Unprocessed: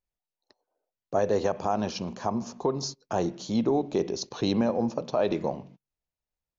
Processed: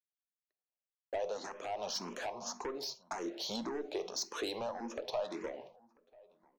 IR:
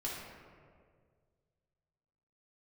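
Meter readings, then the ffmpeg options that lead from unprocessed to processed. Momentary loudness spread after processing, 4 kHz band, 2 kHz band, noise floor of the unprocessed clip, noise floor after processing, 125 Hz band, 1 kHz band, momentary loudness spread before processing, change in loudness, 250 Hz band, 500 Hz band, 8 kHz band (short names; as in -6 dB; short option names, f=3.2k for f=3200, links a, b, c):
4 LU, -3.0 dB, -4.5 dB, under -85 dBFS, under -85 dBFS, -23.5 dB, -10.0 dB, 7 LU, -11.0 dB, -16.0 dB, -11.5 dB, n/a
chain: -filter_complex "[0:a]agate=range=-33dB:threshold=-39dB:ratio=3:detection=peak,highpass=510,acompressor=threshold=-38dB:ratio=5,asoftclip=type=tanh:threshold=-37.5dB,asplit=2[a][b];[b]adelay=991.3,volume=-24dB,highshelf=f=4k:g=-22.3[c];[a][c]amix=inputs=2:normalize=0,asplit=2[d][e];[1:a]atrim=start_sample=2205,atrim=end_sample=3969[f];[e][f]afir=irnorm=-1:irlink=0,volume=-10.5dB[g];[d][g]amix=inputs=2:normalize=0,asplit=2[h][i];[i]afreqshift=1.8[j];[h][j]amix=inputs=2:normalize=1,volume=7dB"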